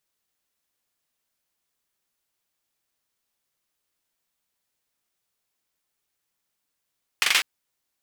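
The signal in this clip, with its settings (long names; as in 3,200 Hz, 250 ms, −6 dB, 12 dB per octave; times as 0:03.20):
synth clap length 0.20 s, apart 42 ms, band 2,300 Hz, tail 0.36 s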